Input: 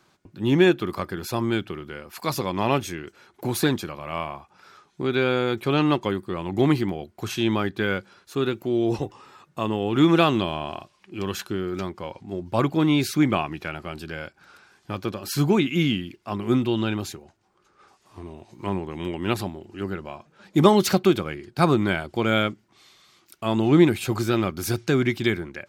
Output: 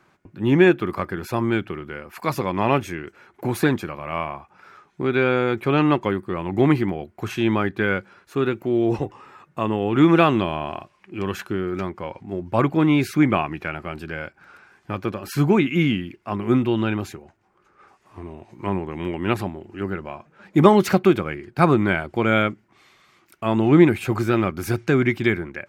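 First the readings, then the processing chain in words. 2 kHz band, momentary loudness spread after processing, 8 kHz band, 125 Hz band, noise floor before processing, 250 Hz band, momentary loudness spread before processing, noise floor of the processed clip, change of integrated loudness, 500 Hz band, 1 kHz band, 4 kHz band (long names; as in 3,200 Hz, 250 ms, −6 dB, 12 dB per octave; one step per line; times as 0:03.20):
+3.5 dB, 16 LU, can't be measured, +2.5 dB, −64 dBFS, +2.5 dB, 16 LU, −62 dBFS, +2.5 dB, +2.5 dB, +3.0 dB, −4.0 dB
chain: high shelf with overshoot 2,900 Hz −7 dB, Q 1.5
level +2.5 dB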